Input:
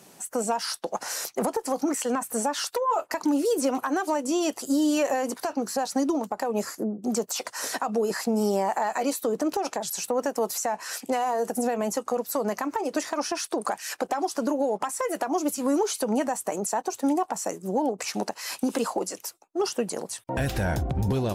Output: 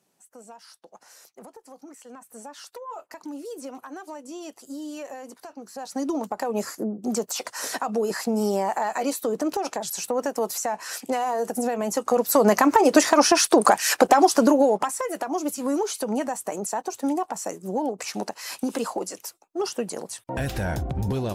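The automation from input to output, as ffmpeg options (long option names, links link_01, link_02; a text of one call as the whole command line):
ffmpeg -i in.wav -af "volume=11.5dB,afade=type=in:start_time=2:duration=0.78:silence=0.473151,afade=type=in:start_time=5.72:duration=0.53:silence=0.223872,afade=type=in:start_time=11.87:duration=0.76:silence=0.281838,afade=type=out:start_time=14.17:duration=0.88:silence=0.237137" out.wav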